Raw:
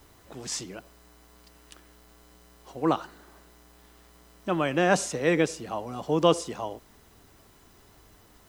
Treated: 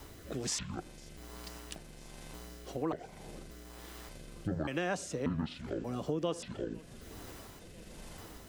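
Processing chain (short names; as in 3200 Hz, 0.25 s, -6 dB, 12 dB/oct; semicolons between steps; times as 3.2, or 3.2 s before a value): trilling pitch shifter -11.5 st, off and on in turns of 0.584 s; rotary speaker horn 1.2 Hz; compressor 4:1, threshold -44 dBFS, peak gain reduction 22.5 dB; warbling echo 0.504 s, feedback 77%, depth 124 cents, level -24 dB; gain +9 dB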